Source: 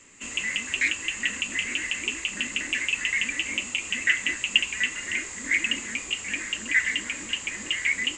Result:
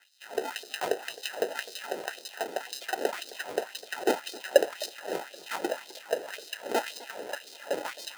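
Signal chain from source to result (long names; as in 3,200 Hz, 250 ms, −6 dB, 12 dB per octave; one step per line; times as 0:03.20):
reversed playback
upward compression, threshold −37 dBFS
reversed playback
decimation without filtering 39×
auto-filter high-pass sine 1.9 Hz 430–4,600 Hz
feedback echo with a swinging delay time 259 ms, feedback 49%, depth 152 cents, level −20 dB
level −4.5 dB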